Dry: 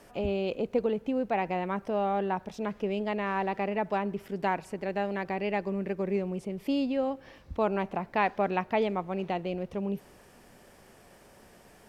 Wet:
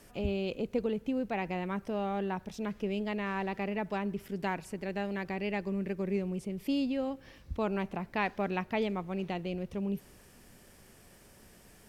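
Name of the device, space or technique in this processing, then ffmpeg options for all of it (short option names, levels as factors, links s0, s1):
smiley-face EQ: -af "lowshelf=f=130:g=5,equalizer=f=740:t=o:w=1.7:g=-6,highshelf=f=6200:g=6,volume=0.841"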